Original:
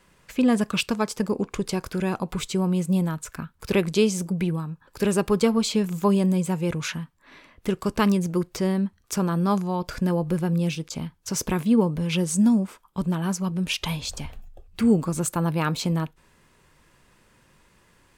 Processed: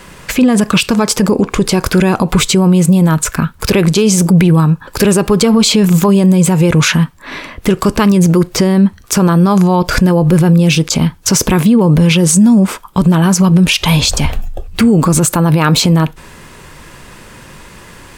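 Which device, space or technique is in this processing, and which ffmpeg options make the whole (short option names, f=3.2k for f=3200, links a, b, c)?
loud club master: -af "acompressor=threshold=-22dB:ratio=2.5,asoftclip=type=hard:threshold=-14.5dB,alimiter=level_in=24.5dB:limit=-1dB:release=50:level=0:latency=1,volume=-1dB"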